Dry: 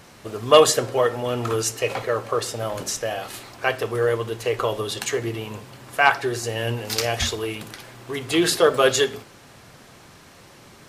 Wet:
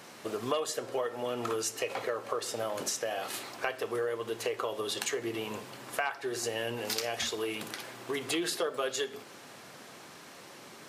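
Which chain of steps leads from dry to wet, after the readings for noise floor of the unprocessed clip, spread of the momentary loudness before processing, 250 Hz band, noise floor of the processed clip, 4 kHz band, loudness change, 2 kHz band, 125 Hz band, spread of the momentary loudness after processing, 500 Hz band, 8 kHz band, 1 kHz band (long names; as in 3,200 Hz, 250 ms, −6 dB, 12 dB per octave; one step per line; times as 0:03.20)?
−48 dBFS, 16 LU, −10.5 dB, −50 dBFS, −10.0 dB, −11.5 dB, −11.5 dB, −18.0 dB, 16 LU, −12.0 dB, −9.0 dB, −12.5 dB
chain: high-pass filter 220 Hz 12 dB per octave
downward compressor 6 to 1, threshold −29 dBFS, peak gain reduction 19.5 dB
level −1 dB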